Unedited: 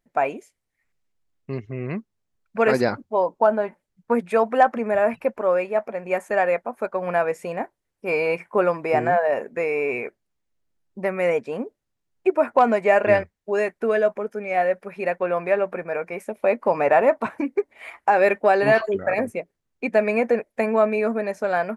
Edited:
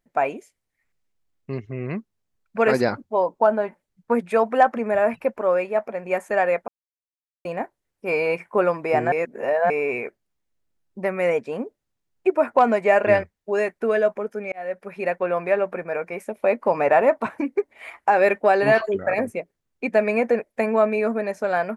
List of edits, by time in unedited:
6.68–7.45 s: mute
9.12–9.70 s: reverse
14.52–14.90 s: fade in

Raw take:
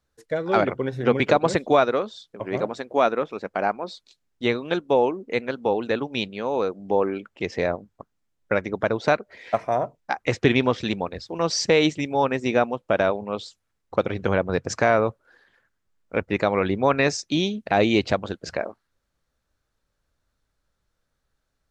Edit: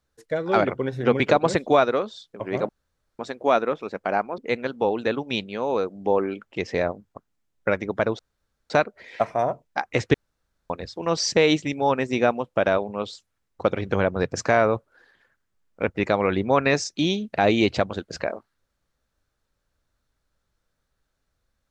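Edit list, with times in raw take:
2.69 s: insert room tone 0.50 s
3.88–5.22 s: delete
9.03 s: insert room tone 0.51 s
10.47–11.03 s: room tone

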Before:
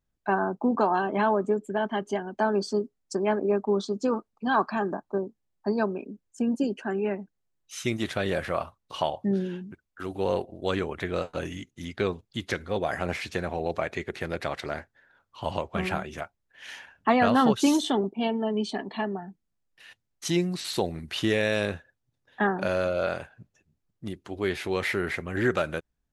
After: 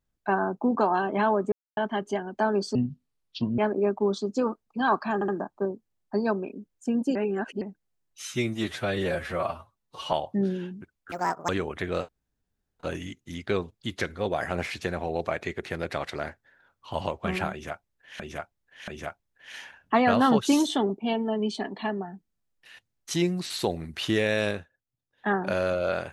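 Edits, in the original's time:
1.52–1.77 s: mute
2.75–3.25 s: speed 60%
4.81 s: stutter 0.07 s, 3 plays
6.68–7.14 s: reverse
7.78–9.03 s: stretch 1.5×
10.02–10.70 s: speed 185%
11.30 s: insert room tone 0.71 s
16.02–16.70 s: loop, 3 plays
21.62–22.48 s: dip -11 dB, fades 0.18 s

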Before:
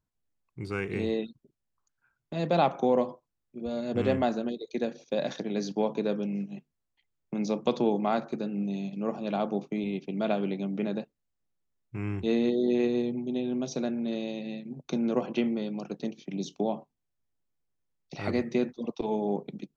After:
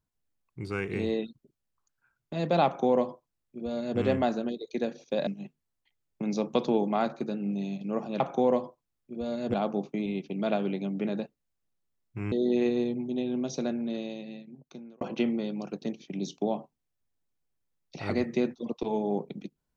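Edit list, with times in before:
2.65–3.99 s: copy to 9.32 s
5.27–6.39 s: delete
12.10–12.50 s: delete
13.91–15.19 s: fade out linear

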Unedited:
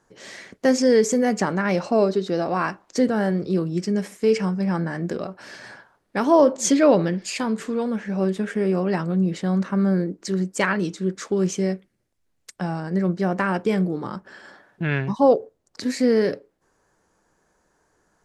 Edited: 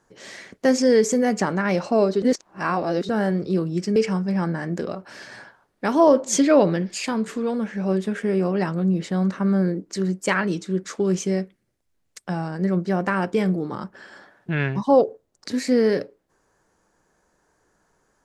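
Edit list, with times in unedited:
2.22–3.09 s: reverse
3.96–4.28 s: delete

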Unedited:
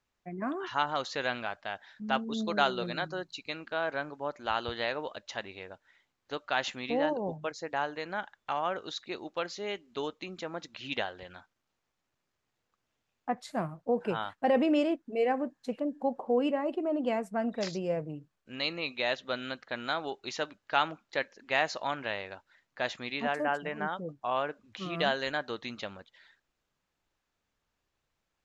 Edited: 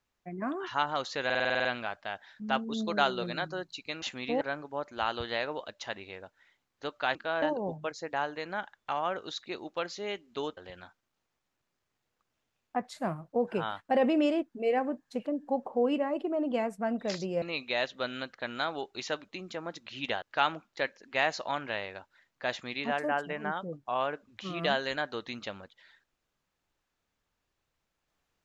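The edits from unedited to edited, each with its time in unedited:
1.25 s: stutter 0.05 s, 9 plays
3.62–3.89 s: swap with 6.63–7.02 s
10.17–11.10 s: move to 20.58 s
17.95–18.71 s: delete

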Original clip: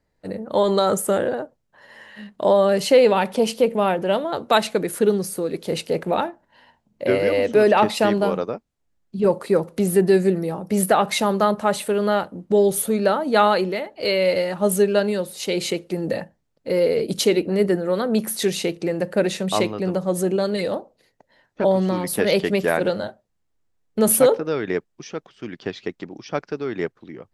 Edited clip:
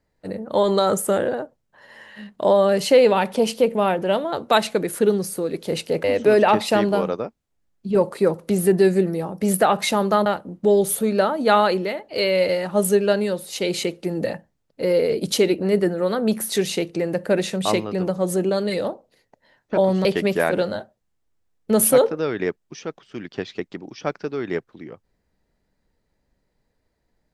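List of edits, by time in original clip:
6.04–7.33 s: delete
11.55–12.13 s: delete
21.92–22.33 s: delete

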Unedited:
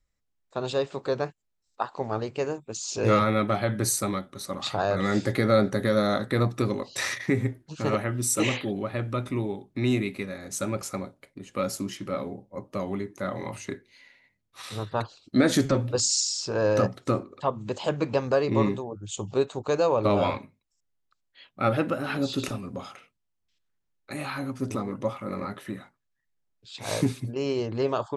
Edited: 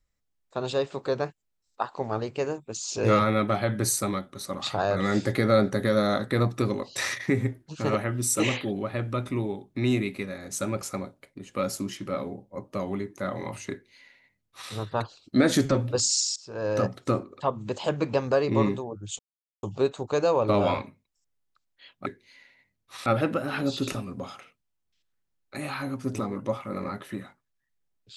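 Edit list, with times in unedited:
13.71–14.71 s: copy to 21.62 s
16.36–16.96 s: fade in, from -22.5 dB
19.19 s: insert silence 0.44 s

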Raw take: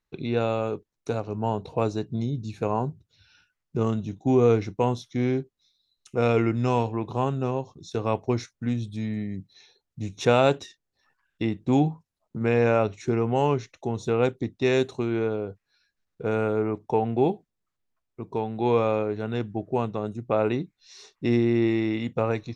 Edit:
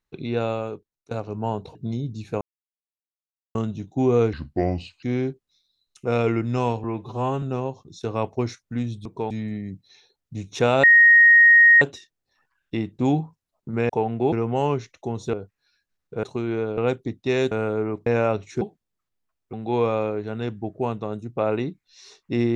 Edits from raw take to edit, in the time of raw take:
0.50–1.11 s: fade out, to -23 dB
1.75–2.04 s: delete
2.70–3.84 s: mute
4.62–5.13 s: speed 73%
6.94–7.33 s: stretch 1.5×
10.49 s: add tone 1.87 kHz -9 dBFS 0.98 s
12.57–13.12 s: swap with 16.86–17.29 s
14.13–14.87 s: swap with 15.41–16.31 s
18.21–18.46 s: move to 8.96 s

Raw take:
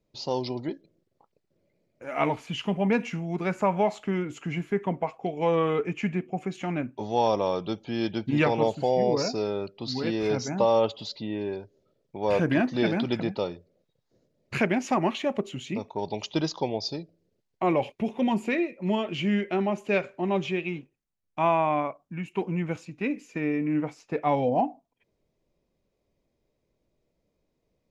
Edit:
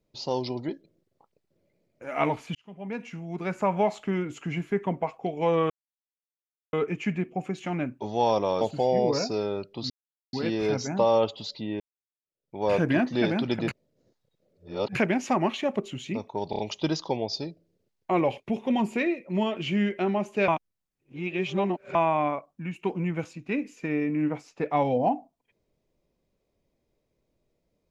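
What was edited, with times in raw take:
2.55–3.81 s: fade in
5.70 s: insert silence 1.03 s
7.58–8.65 s: delete
9.94 s: insert silence 0.43 s
11.41–12.17 s: fade in exponential
13.29–14.56 s: reverse
16.11 s: stutter 0.03 s, 4 plays
20.00–21.47 s: reverse

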